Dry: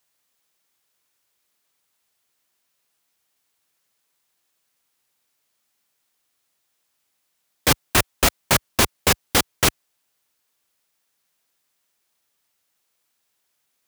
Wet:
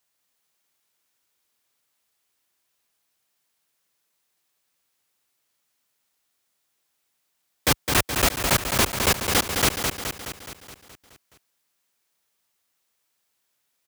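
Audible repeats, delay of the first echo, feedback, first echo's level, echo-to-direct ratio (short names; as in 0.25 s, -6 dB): 7, 0.211 s, 59%, -5.5 dB, -3.5 dB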